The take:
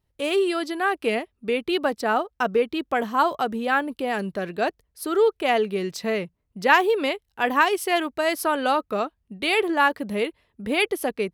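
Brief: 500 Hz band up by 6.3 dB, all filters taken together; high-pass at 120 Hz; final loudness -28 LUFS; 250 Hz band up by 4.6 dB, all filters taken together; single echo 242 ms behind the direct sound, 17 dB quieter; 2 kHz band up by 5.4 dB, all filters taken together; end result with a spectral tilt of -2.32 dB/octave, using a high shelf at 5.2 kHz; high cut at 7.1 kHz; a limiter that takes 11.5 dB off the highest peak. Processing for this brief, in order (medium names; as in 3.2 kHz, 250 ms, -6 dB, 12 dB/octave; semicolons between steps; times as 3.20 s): high-pass 120 Hz; low-pass 7.1 kHz; peaking EQ 250 Hz +3.5 dB; peaking EQ 500 Hz +6.5 dB; peaking EQ 2 kHz +7 dB; treble shelf 5.2 kHz -3.5 dB; peak limiter -10.5 dBFS; delay 242 ms -17 dB; trim -7 dB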